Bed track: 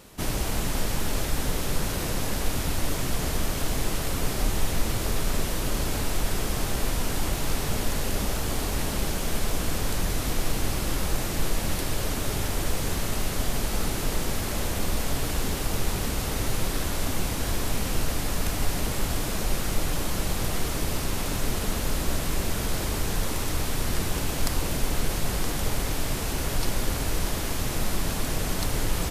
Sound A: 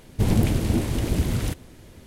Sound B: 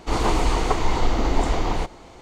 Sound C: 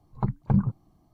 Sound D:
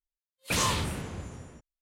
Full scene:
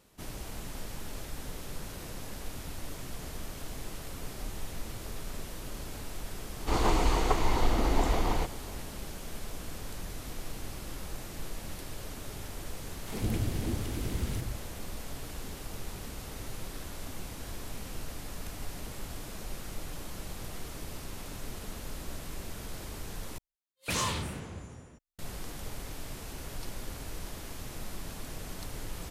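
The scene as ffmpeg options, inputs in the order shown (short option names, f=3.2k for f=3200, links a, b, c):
-filter_complex "[0:a]volume=-13.5dB[a];[1:a]acrossover=split=170|730[b][c][d];[c]adelay=60[e];[b]adelay=160[f];[f][e][d]amix=inputs=3:normalize=0[g];[a]asplit=2[h][i];[h]atrim=end=23.384[j];[4:a]atrim=end=1.81,asetpts=PTS-STARTPTS,volume=-4dB[k];[i]atrim=start=25.186[l];[2:a]atrim=end=2.21,asetpts=PTS-STARTPTS,volume=-5.5dB,afade=t=in:d=0.004:c=hsin,afade=t=out:st=2.206:d=0.004:c=hsin,adelay=6600[m];[g]atrim=end=2.06,asetpts=PTS-STARTPTS,volume=-10dB,afade=t=in:d=0.004:c=hsin,afade=t=out:st=2.056:d=0.004:c=hsin,adelay=12870[n];[j][k]acrossfade=d=0.004:c1=hsin:c2=hsin[o];[o][l]acrossfade=d=0.004:c1=hsin:c2=hsin[p];[p][m][n]amix=inputs=3:normalize=0"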